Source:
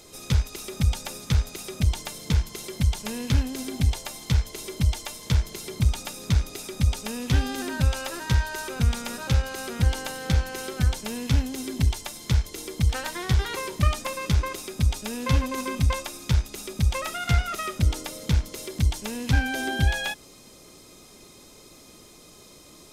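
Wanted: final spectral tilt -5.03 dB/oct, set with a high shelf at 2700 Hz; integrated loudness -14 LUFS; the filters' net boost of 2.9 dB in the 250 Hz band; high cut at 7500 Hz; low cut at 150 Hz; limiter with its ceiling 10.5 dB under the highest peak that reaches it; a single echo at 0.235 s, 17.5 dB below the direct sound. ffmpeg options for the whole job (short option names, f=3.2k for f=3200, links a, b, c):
-af "highpass=150,lowpass=7.5k,equalizer=f=250:t=o:g=5,highshelf=f=2.7k:g=-8.5,alimiter=limit=-22.5dB:level=0:latency=1,aecho=1:1:235:0.133,volume=19.5dB"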